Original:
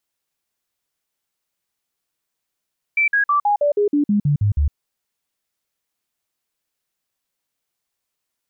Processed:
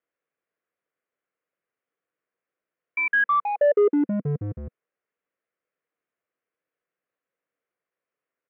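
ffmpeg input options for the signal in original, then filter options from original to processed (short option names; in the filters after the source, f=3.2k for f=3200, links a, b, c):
-f lavfi -i "aevalsrc='0.211*clip(min(mod(t,0.16),0.11-mod(t,0.16))/0.005,0,1)*sin(2*PI*2330*pow(2,-floor(t/0.16)/2)*mod(t,0.16))':d=1.76:s=44100"
-af "aresample=8000,volume=16.5dB,asoftclip=hard,volume=-16.5dB,aresample=44100,highpass=190,equalizer=f=220:t=q:w=4:g=-5,equalizer=f=490:t=q:w=4:g=7,equalizer=f=870:t=q:w=4:g=-9,lowpass=f=2.1k:w=0.5412,lowpass=f=2.1k:w=1.3066"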